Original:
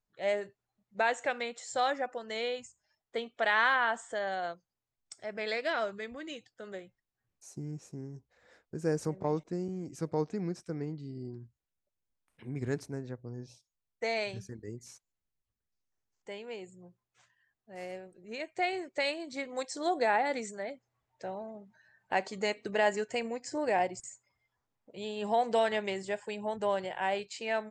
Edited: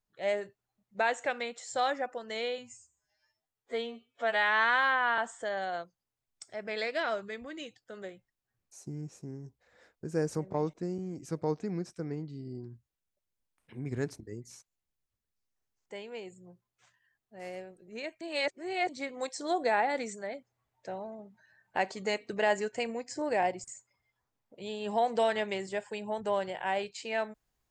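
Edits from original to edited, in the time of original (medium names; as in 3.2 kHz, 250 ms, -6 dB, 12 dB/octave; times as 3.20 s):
2.58–3.88 s: stretch 2×
12.90–14.56 s: delete
18.57–19.25 s: reverse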